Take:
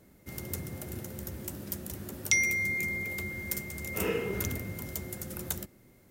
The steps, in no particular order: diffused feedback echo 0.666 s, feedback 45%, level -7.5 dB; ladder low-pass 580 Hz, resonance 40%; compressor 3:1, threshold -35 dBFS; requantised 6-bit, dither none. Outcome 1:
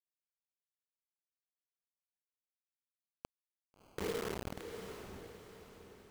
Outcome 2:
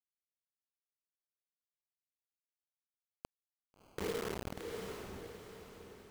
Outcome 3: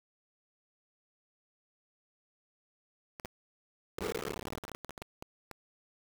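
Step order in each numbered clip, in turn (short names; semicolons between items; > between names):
ladder low-pass > requantised > compressor > diffused feedback echo; ladder low-pass > requantised > diffused feedback echo > compressor; ladder low-pass > compressor > diffused feedback echo > requantised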